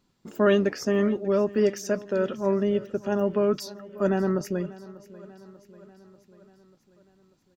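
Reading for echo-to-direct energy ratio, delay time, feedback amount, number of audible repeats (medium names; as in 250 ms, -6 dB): -17.0 dB, 591 ms, 59%, 4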